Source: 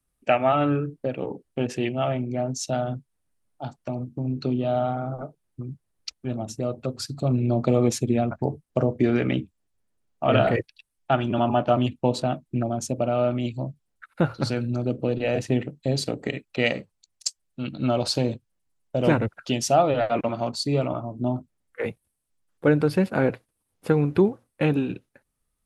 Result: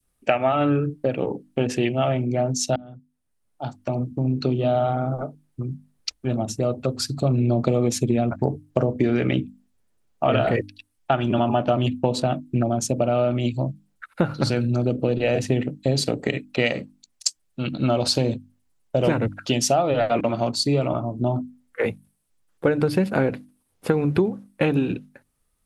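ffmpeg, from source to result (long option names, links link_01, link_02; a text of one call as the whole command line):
ffmpeg -i in.wav -filter_complex "[0:a]asplit=2[link_01][link_02];[link_01]atrim=end=2.76,asetpts=PTS-STARTPTS,afade=type=out:start_time=2.756:duration=0.004:curve=hsin[link_03];[link_02]atrim=start=2.76,asetpts=PTS-STARTPTS,afade=type=in:duration=1.18[link_04];[link_03][link_04]concat=n=2:v=0:a=1,bandreject=frequency=50:width_type=h:width=6,bandreject=frequency=100:width_type=h:width=6,bandreject=frequency=150:width_type=h:width=6,bandreject=frequency=200:width_type=h:width=6,bandreject=frequency=250:width_type=h:width=6,bandreject=frequency=300:width_type=h:width=6,adynamicequalizer=threshold=0.0141:dfrequency=1100:dqfactor=0.91:tfrequency=1100:tqfactor=0.91:attack=5:release=100:ratio=0.375:range=2:mode=cutabove:tftype=bell,acompressor=threshold=-22dB:ratio=6,volume=6dB" out.wav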